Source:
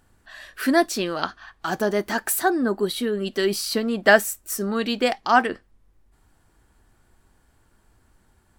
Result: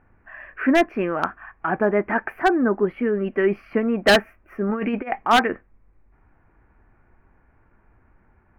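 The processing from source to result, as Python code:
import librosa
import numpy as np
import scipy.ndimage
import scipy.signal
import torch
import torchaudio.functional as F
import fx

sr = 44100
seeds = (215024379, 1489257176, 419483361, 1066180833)

y = scipy.signal.sosfilt(scipy.signal.ellip(4, 1.0, 40, 2400.0, 'lowpass', fs=sr, output='sos'), x)
y = fx.over_compress(y, sr, threshold_db=-27.0, ratio=-0.5, at=(4.69, 5.23))
y = 10.0 ** (-11.0 / 20.0) * (np.abs((y / 10.0 ** (-11.0 / 20.0) + 3.0) % 4.0 - 2.0) - 1.0)
y = y * 10.0 ** (3.5 / 20.0)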